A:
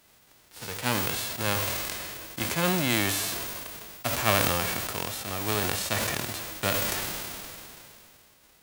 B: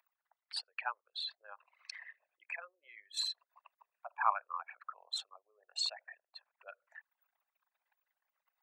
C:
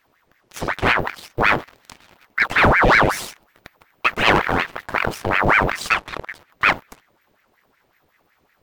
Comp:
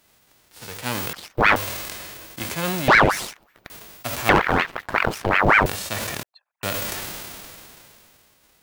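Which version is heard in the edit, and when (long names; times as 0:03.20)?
A
0:01.13–0:01.56: punch in from C
0:02.88–0:03.70: punch in from C
0:04.29–0:05.66: punch in from C
0:06.23–0:06.63: punch in from B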